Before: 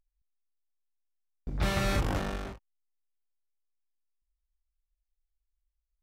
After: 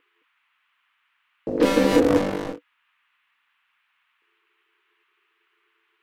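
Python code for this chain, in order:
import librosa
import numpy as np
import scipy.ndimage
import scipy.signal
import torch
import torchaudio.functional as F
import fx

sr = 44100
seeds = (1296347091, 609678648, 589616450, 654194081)

y = fx.highpass(x, sr, hz=63.0, slope=6)
y = fx.peak_eq(y, sr, hz=100.0, db=14.0, octaves=1.2)
y = y * np.sin(2.0 * np.pi * 390.0 * np.arange(len(y)) / sr)
y = fx.dmg_noise_band(y, sr, seeds[0], low_hz=1000.0, high_hz=3000.0, level_db=-78.0)
y = y * 10.0 ** (8.0 / 20.0)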